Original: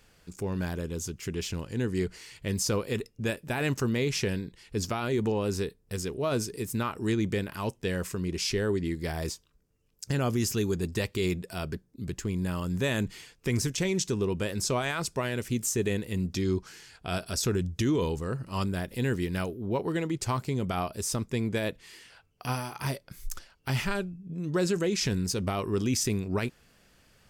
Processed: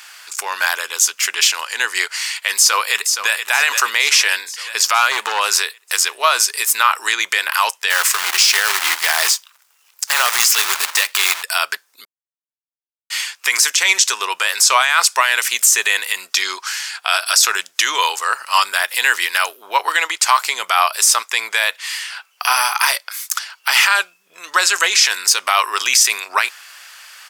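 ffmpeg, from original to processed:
ffmpeg -i in.wav -filter_complex "[0:a]asplit=2[link_01][link_02];[link_02]afade=type=in:start_time=2.55:duration=0.01,afade=type=out:start_time=3.47:duration=0.01,aecho=0:1:470|940|1410|1880|2350|2820|3290:0.251189|0.150713|0.0904279|0.0542567|0.032554|0.0195324|0.0117195[link_03];[link_01][link_03]amix=inputs=2:normalize=0,asettb=1/sr,asplit=3[link_04][link_05][link_06];[link_04]atrim=end=4.944[link_07];[link_05]atrim=start=4.94:end=5.4,asetpts=PTS-STARTPTS,afade=type=in:duration=0.004:curve=qsin,afade=type=out:start_time=0.456:duration=0.004:curve=qsin,asoftclip=type=hard:threshold=-23.5dB[link_08];[link_06]atrim=start=5.396[link_09];[link_07][link_08]acrossfade=duration=0.004:curve1=hsin:curve2=qsin[link_10];[link_10][link_09]acrossfade=duration=0.004:curve1=qsin:curve2=hsin,asettb=1/sr,asplit=3[link_11][link_12][link_13];[link_11]atrim=end=7.904[link_14];[link_12]atrim=start=7.9:end=11.43,asetpts=PTS-STARTPTS,afade=type=in:duration=0.004:curve=qsin,afade=type=out:start_time=3.526:duration=0.004:curve=qsin,acrusher=bits=2:mode=log:mix=0:aa=0.000001[link_15];[link_13]atrim=start=11.426[link_16];[link_14][link_15]acrossfade=duration=0.004:curve1=hsin:curve2=qsin[link_17];[link_17][link_16]acrossfade=duration=0.004:curve1=qsin:curve2=hsin,asplit=3[link_18][link_19][link_20];[link_18]atrim=end=12.05,asetpts=PTS-STARTPTS,afade=type=out:start_time=12.046:duration=0.004:curve=hsin[link_21];[link_19]atrim=start=12.05:end=13.1,asetpts=PTS-STARTPTS,volume=0[link_22];[link_20]atrim=start=13.1,asetpts=PTS-STARTPTS,afade=type=in:duration=0.004:curve=hsin[link_23];[link_21][link_22][link_23]concat=n=3:v=0:a=1,highpass=frequency=1000:width=0.5412,highpass=frequency=1000:width=1.3066,alimiter=level_in=26dB:limit=-1dB:release=50:level=0:latency=1,volume=-1dB" out.wav

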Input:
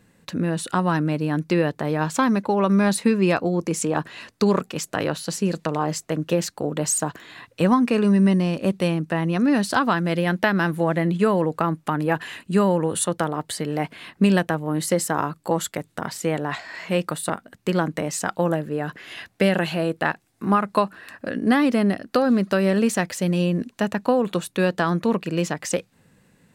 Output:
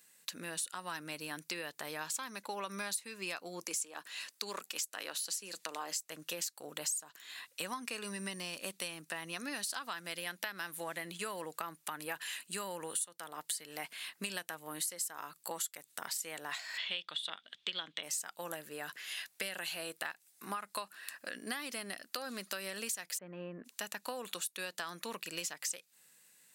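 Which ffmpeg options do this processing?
ffmpeg -i in.wav -filter_complex "[0:a]asettb=1/sr,asplit=3[link_01][link_02][link_03];[link_01]atrim=end=3.644[link_04];[link_02]atrim=start=3.64:end=6.04,asetpts=PTS-STARTPTS,afade=type=in:duration=0.004:curve=qsin,afade=type=out:start_time=2.396:duration=0.004:curve=qsin,highpass=frequency=200:width=0.5412,highpass=frequency=200:width=1.3066[link_05];[link_03]atrim=start=6.036[link_06];[link_04][link_05]acrossfade=duration=0.004:curve1=hsin:curve2=qsin[link_07];[link_07][link_06]acrossfade=duration=0.004:curve1=qsin:curve2=hsin,asplit=3[link_08][link_09][link_10];[link_08]afade=type=out:start_time=16.77:duration=0.02[link_11];[link_09]lowpass=frequency=3400:width_type=q:width=11,afade=type=in:start_time=16.77:duration=0.02,afade=type=out:start_time=18.02:duration=0.02[link_12];[link_10]afade=type=in:start_time=18.02:duration=0.02[link_13];[link_11][link_12][link_13]amix=inputs=3:normalize=0,asplit=3[link_14][link_15][link_16];[link_14]afade=type=out:start_time=23.17:duration=0.02[link_17];[link_15]lowpass=frequency=1600:width=0.5412,lowpass=frequency=1600:width=1.3066,afade=type=in:start_time=23.17:duration=0.02,afade=type=out:start_time=23.64:duration=0.02[link_18];[link_16]afade=type=in:start_time=23.64:duration=0.02[link_19];[link_17][link_18][link_19]amix=inputs=3:normalize=0,aderivative,acompressor=threshold=-41dB:ratio=6,volume=5dB" out.wav

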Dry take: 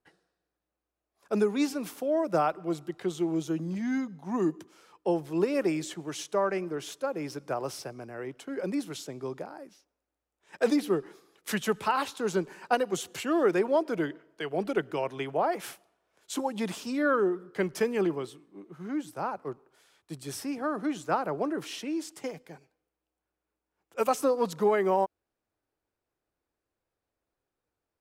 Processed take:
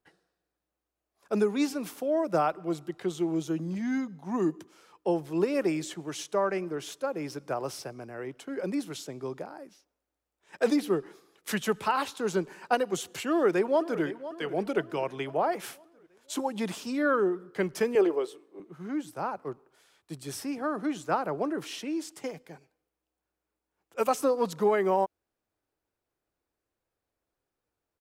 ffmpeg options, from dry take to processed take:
ffmpeg -i in.wav -filter_complex "[0:a]asplit=2[link_01][link_02];[link_02]afade=type=in:start_time=13.28:duration=0.01,afade=type=out:start_time=14.02:duration=0.01,aecho=0:1:510|1020|1530|2040|2550:0.199526|0.0997631|0.0498816|0.0249408|0.0124704[link_03];[link_01][link_03]amix=inputs=2:normalize=0,asettb=1/sr,asplit=3[link_04][link_05][link_06];[link_04]atrim=end=17.954[link_07];[link_05]atrim=start=17.95:end=18.6,asetpts=PTS-STARTPTS,afade=type=in:duration=0.004:curve=qsin,afade=type=out:start_time=0.646:duration=0.004:curve=qsin,highpass=frequency=450:width_type=q:width=2.6[link_08];[link_06]atrim=start=18.596[link_09];[link_07][link_08]acrossfade=duration=0.004:curve1=hsin:curve2=qsin[link_10];[link_10][link_09]acrossfade=duration=0.004:curve1=qsin:curve2=hsin" out.wav

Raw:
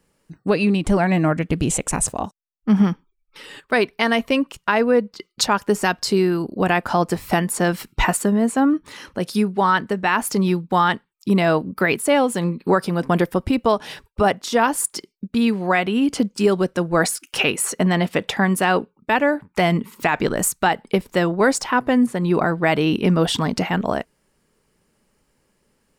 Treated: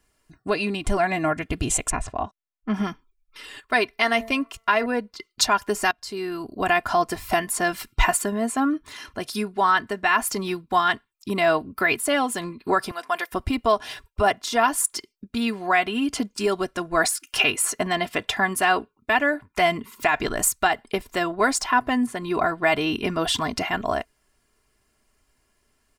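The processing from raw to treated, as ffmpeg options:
ffmpeg -i in.wav -filter_complex "[0:a]asettb=1/sr,asplit=3[link_01][link_02][link_03];[link_01]atrim=end=1.904[link_04];[link_02]atrim=start=1.9:end=2.74,asetpts=PTS-STARTPTS,afade=type=in:duration=0.004:curve=qsin,afade=type=out:start_time=0.836:duration=0.004:curve=qsin,lowpass=2900[link_05];[link_03]atrim=start=2.736[link_06];[link_04][link_05]acrossfade=duration=0.004:curve1=hsin:curve2=qsin[link_07];[link_07][link_06]acrossfade=duration=0.004:curve1=qsin:curve2=hsin,asettb=1/sr,asplit=3[link_08][link_09][link_10];[link_08]atrim=end=3.874[link_11];[link_09]atrim=start=3.87:end=4.86,asetpts=PTS-STARTPTS,afade=type=in:duration=0.004:curve=qsin,afade=type=out:start_time=0.986:duration=0.004:curve=qsin,bandreject=frequency=225.4:width_type=h:width=4,bandreject=frequency=450.8:width_type=h:width=4,bandreject=frequency=676.2:width_type=h:width=4,bandreject=frequency=901.6:width_type=h:width=4,bandreject=frequency=1127:width_type=h:width=4,bandreject=frequency=1352.4:width_type=h:width=4,bandreject=frequency=1577.8:width_type=h:width=4,bandreject=frequency=1803.2:width_type=h:width=4,bandreject=frequency=2028.6:width_type=h:width=4,bandreject=frequency=2254:width_type=h:width=4[link_12];[link_10]atrim=start=4.856[link_13];[link_11][link_12]acrossfade=duration=0.004:curve1=hsin:curve2=qsin[link_14];[link_14][link_13]acrossfade=duration=0.004:curve1=qsin:curve2=hsin,asettb=1/sr,asplit=3[link_15][link_16][link_17];[link_15]atrim=end=12.914[link_18];[link_16]atrim=start=12.91:end=13.32,asetpts=PTS-STARTPTS,afade=type=in:duration=0.004:curve=qsin,afade=type=out:start_time=0.406:duration=0.004:curve=qsin,highpass=760[link_19];[link_17]atrim=start=13.316[link_20];[link_18][link_19]acrossfade=duration=0.004:curve1=hsin:curve2=qsin[link_21];[link_21][link_20]acrossfade=duration=0.004:curve1=qsin:curve2=hsin,asplit=2[link_22][link_23];[link_22]atrim=end=5.91,asetpts=PTS-STARTPTS,afade=type=out:start_time=5.906:duration=0.004:curve=hsin:silence=0.0841395[link_24];[link_23]atrim=start=5.91,asetpts=PTS-STARTPTS,afade=type=in:duration=0.66:silence=0.0841395[link_25];[link_24][link_25]concat=n=2:v=0:a=1,equalizer=frequency=340:width=1.3:gain=-8.5,aecho=1:1:2.9:0.71,volume=-2dB" out.wav

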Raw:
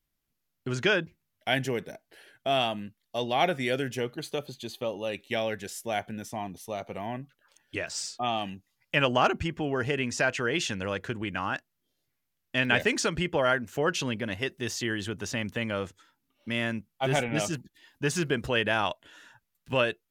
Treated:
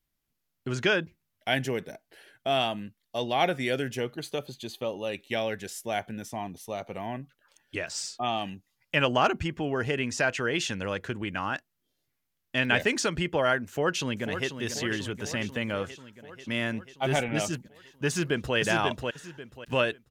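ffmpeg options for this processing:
ffmpeg -i in.wav -filter_complex "[0:a]asplit=2[link_01][link_02];[link_02]afade=type=in:start_time=13.67:duration=0.01,afade=type=out:start_time=14.52:duration=0.01,aecho=0:1:490|980|1470|1960|2450|2940|3430|3920|4410|4900|5390:0.354813|0.248369|0.173859|0.121701|0.0851907|0.0596335|0.0417434|0.0292204|0.0204543|0.014318|0.0100226[link_03];[link_01][link_03]amix=inputs=2:normalize=0,asplit=2[link_04][link_05];[link_05]afade=type=in:start_time=18.07:duration=0.01,afade=type=out:start_time=18.56:duration=0.01,aecho=0:1:540|1080|1620|2160:0.668344|0.167086|0.0417715|0.0104429[link_06];[link_04][link_06]amix=inputs=2:normalize=0" out.wav

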